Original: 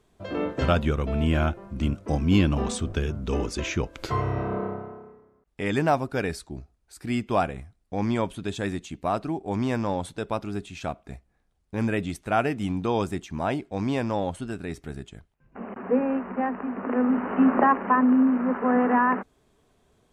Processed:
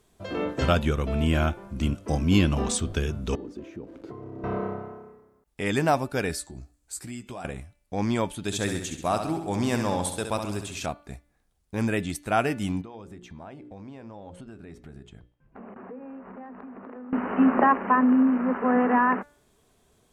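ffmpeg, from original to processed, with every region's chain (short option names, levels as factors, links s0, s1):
-filter_complex "[0:a]asettb=1/sr,asplit=3[s0][s1][s2];[s0]atrim=end=3.354[s3];[s1]atrim=start=3.35:end=4.44,asetpts=PTS-STARTPTS,afade=t=in:d=0.004:c=qsin,afade=t=out:st=1.086:d=0.004:c=qsin,aeval=exprs='val(0)+0.5*0.0188*sgn(val(0))':c=same,acompressor=threshold=0.0398:ratio=5:attack=3.2:release=140:knee=1:detection=peak,bandpass=f=290:t=q:w=1.8[s4];[s2]atrim=start=4.436[s5];[s3][s4]acrossfade=d=0.004:c1=hsin:c2=qsin[s6];[s6][s5]acrossfade=d=0.004:c1=qsin:c2=hsin,asettb=1/sr,asplit=3[s7][s8][s9];[s7]atrim=end=6.394[s10];[s8]atrim=start=6.39:end=7.45,asetpts=PTS-STARTPTS,afade=t=in:d=0.004:c=qsin,afade=t=out:st=1.056:d=0.004:c=qsin,equalizer=f=7600:t=o:w=0.45:g=9,acompressor=threshold=0.0158:ratio=6:attack=3.2:release=140:knee=1:detection=peak,asplit=2[s11][s12];[s12]adelay=16,volume=0.398[s13];[s11][s13]amix=inputs=2:normalize=0,atrim=end_sample=46746[s14];[s9]atrim=start=7.446[s15];[s10][s14]acrossfade=d=0.004:c1=hsin:c2=qsin[s16];[s16][s15]acrossfade=d=0.004:c1=qsin:c2=hsin,asettb=1/sr,asplit=3[s17][s18][s19];[s17]atrim=end=8.444[s20];[s18]atrim=start=8.44:end=10.86,asetpts=PTS-STARTPTS,afade=t=in:d=0.004:c=qsin,afade=t=out:st=2.416:d=0.004:c=qsin,highshelf=f=4800:g=6.5,aecho=1:1:67|134|201|268|335|402|469:0.422|0.232|0.128|0.0702|0.0386|0.0212|0.0117,atrim=end_sample=106722[s21];[s19]atrim=start=10.856[s22];[s20][s21]acrossfade=d=0.004:c1=hsin:c2=qsin[s23];[s23][s22]acrossfade=d=0.004:c1=qsin:c2=hsin,asettb=1/sr,asplit=3[s24][s25][s26];[s24]atrim=end=12.814[s27];[s25]atrim=start=12.81:end=17.13,asetpts=PTS-STARTPTS,afade=t=in:d=0.004:c=qsin,afade=t=out:st=4.316:d=0.004:c=qsin,lowpass=f=1500:p=1,bandreject=f=60:t=h:w=6,bandreject=f=120:t=h:w=6,bandreject=f=180:t=h:w=6,bandreject=f=240:t=h:w=6,bandreject=f=300:t=h:w=6,bandreject=f=360:t=h:w=6,bandreject=f=420:t=h:w=6,bandreject=f=480:t=h:w=6,bandreject=f=540:t=h:w=6,acompressor=threshold=0.0112:ratio=6:attack=3.2:release=140:knee=1:detection=peak[s28];[s26]atrim=start=17.126[s29];[s27][s28]acrossfade=d=0.004:c1=hsin:c2=qsin[s30];[s30][s29]acrossfade=d=0.004:c1=qsin:c2=hsin,aemphasis=mode=production:type=cd,bandreject=f=291.4:t=h:w=4,bandreject=f=582.8:t=h:w=4,bandreject=f=874.2:t=h:w=4,bandreject=f=1165.6:t=h:w=4,bandreject=f=1457:t=h:w=4,bandreject=f=1748.4:t=h:w=4,bandreject=f=2039.8:t=h:w=4,bandreject=f=2331.2:t=h:w=4,bandreject=f=2622.6:t=h:w=4,bandreject=f=2914:t=h:w=4,bandreject=f=3205.4:t=h:w=4,bandreject=f=3496.8:t=h:w=4,bandreject=f=3788.2:t=h:w=4,bandreject=f=4079.6:t=h:w=4,bandreject=f=4371:t=h:w=4,bandreject=f=4662.4:t=h:w=4"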